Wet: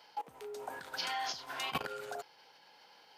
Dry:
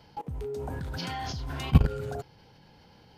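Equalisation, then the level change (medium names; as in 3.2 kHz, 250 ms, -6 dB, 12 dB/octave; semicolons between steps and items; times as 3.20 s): high-pass 730 Hz 12 dB/octave; +1.0 dB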